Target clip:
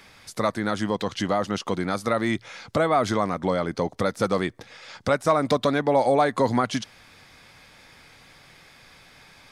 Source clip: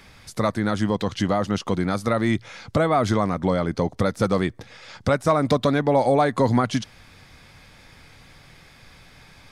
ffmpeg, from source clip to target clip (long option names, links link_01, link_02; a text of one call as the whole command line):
ffmpeg -i in.wav -af "lowshelf=frequency=170:gain=-11" out.wav